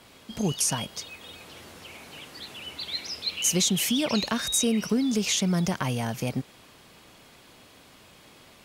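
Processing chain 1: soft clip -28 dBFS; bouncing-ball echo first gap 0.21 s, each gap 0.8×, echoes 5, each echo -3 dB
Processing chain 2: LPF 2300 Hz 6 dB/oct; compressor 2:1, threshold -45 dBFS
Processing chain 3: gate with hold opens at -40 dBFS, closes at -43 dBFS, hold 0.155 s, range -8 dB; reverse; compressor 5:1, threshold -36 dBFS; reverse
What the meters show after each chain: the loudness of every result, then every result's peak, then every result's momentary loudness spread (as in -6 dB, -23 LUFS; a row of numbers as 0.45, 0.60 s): -30.0, -40.5, -38.0 LUFS; -18.5, -24.5, -23.5 dBFS; 22, 17, 8 LU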